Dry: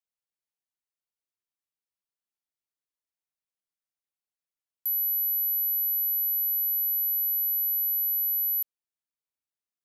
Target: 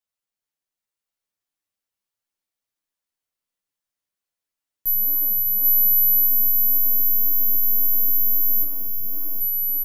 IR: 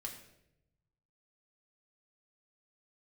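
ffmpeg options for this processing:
-filter_complex "[0:a]acontrast=54,flanger=delay=1.3:depth=9.3:regen=-77:speed=0.92:shape=sinusoidal,aeval=exprs='0.112*(cos(1*acos(clip(val(0)/0.112,-1,1)))-cos(1*PI/2))+0.0316*(cos(2*acos(clip(val(0)/0.112,-1,1)))-cos(2*PI/2))':channel_layout=same,aecho=1:1:780|1404|1903|2303|2622:0.631|0.398|0.251|0.158|0.1,asplit=2[link_01][link_02];[1:a]atrim=start_sample=2205,adelay=10[link_03];[link_02][link_03]afir=irnorm=-1:irlink=0,volume=1dB[link_04];[link_01][link_04]amix=inputs=2:normalize=0"

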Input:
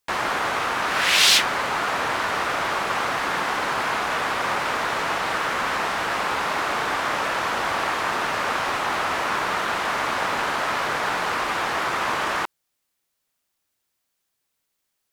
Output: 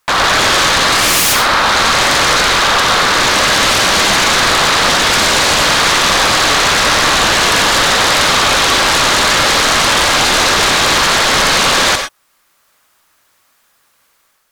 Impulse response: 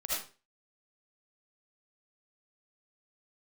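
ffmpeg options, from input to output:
-filter_complex "[0:a]equalizer=frequency=1200:width_type=o:width=1.4:gain=9.5,dynaudnorm=framelen=150:gausssize=5:maxgain=6dB,aeval=exprs='0.944*sin(PI/2*7.08*val(0)/0.944)':channel_layout=same,asetrate=45938,aresample=44100,asplit=2[link_01][link_02];[1:a]atrim=start_sample=2205,afade=type=out:start_time=0.16:duration=0.01,atrim=end_sample=7497,asetrate=38367,aresample=44100[link_03];[link_02][link_03]afir=irnorm=-1:irlink=0,volume=-7.5dB[link_04];[link_01][link_04]amix=inputs=2:normalize=0,volume=-11dB"

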